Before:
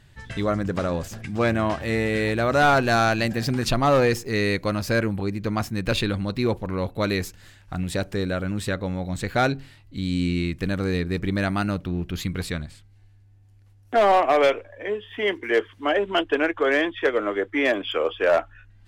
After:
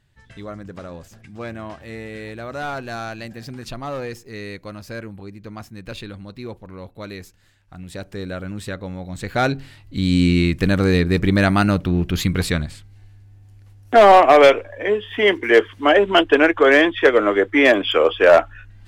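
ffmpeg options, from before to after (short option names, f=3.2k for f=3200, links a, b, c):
-af "volume=8dB,afade=t=in:st=7.76:d=0.57:silence=0.446684,afade=t=in:st=9.12:d=1.02:silence=0.281838"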